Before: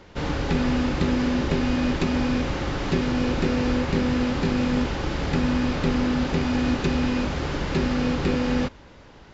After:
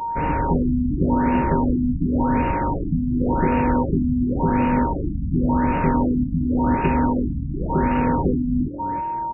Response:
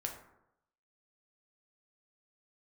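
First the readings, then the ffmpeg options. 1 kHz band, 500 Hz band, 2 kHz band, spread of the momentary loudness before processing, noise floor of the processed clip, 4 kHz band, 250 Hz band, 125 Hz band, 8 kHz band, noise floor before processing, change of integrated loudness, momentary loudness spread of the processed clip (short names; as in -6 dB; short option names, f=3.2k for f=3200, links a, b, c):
+9.5 dB, +1.5 dB, -2.5 dB, 4 LU, -26 dBFS, under -15 dB, +3.0 dB, +3.5 dB, n/a, -47 dBFS, +3.0 dB, 5 LU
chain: -filter_complex "[0:a]asplit=5[a][b][c][d][e];[b]adelay=327,afreqshift=41,volume=-13dB[f];[c]adelay=654,afreqshift=82,volume=-21.6dB[g];[d]adelay=981,afreqshift=123,volume=-30.3dB[h];[e]adelay=1308,afreqshift=164,volume=-38.9dB[i];[a][f][g][h][i]amix=inputs=5:normalize=0,aeval=exprs='val(0)+0.0501*sin(2*PI*930*n/s)':c=same,afftfilt=real='re*lt(b*sr/1024,260*pow(2900/260,0.5+0.5*sin(2*PI*0.91*pts/sr)))':imag='im*lt(b*sr/1024,260*pow(2900/260,0.5+0.5*sin(2*PI*0.91*pts/sr)))':win_size=1024:overlap=0.75,volume=3dB"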